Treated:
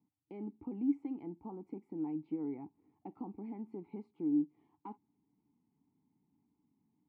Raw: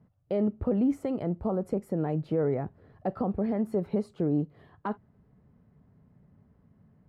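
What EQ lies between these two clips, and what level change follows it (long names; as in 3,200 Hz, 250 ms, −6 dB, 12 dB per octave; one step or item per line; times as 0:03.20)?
formant filter u
−1.5 dB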